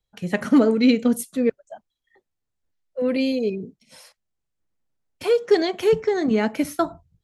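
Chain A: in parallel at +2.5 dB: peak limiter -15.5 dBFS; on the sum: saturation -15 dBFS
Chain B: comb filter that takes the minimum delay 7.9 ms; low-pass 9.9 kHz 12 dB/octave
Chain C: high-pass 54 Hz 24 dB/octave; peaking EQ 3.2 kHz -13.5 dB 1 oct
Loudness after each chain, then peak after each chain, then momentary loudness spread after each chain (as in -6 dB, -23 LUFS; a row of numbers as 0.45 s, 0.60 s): -21.5 LUFS, -23.5 LUFS, -22.0 LUFS; -15.0 dBFS, -6.5 dBFS, -7.0 dBFS; 18 LU, 15 LU, 11 LU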